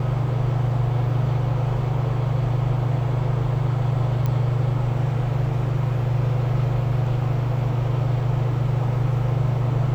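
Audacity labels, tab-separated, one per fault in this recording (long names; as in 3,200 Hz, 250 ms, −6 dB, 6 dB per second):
4.260000	4.260000	click −14 dBFS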